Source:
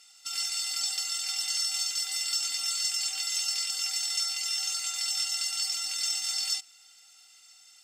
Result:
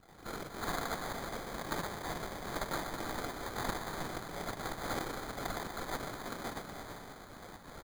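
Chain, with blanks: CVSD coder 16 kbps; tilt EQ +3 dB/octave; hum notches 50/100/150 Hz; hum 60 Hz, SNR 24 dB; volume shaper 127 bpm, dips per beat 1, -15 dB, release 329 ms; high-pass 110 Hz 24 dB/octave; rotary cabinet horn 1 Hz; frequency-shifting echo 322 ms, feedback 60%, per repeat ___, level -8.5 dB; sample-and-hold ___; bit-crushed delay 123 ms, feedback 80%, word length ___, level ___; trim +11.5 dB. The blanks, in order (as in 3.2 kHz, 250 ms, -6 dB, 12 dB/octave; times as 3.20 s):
-32 Hz, 16×, 11-bit, -9.5 dB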